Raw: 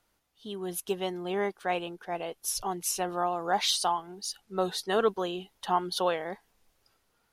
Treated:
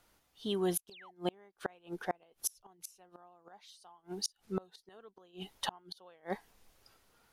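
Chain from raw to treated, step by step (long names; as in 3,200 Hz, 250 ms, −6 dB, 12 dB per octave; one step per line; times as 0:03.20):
sound drawn into the spectrogram fall, 0:00.91–0:01.11, 670–5,000 Hz −24 dBFS
gate with flip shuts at −25 dBFS, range −34 dB
level +4 dB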